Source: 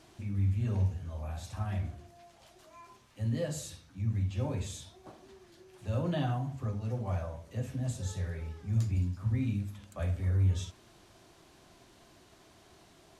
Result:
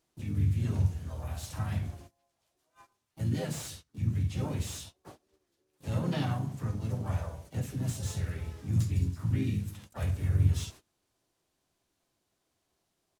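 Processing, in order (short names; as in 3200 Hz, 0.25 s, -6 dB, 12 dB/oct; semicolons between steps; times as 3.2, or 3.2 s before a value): gate -50 dBFS, range -23 dB; dynamic EQ 570 Hz, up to -5 dB, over -48 dBFS, Q 1.4; harmoniser -4 st -7 dB, +3 st -9 dB, +7 st -10 dB; high shelf 6700 Hz +11 dB; slew limiter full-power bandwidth 65 Hz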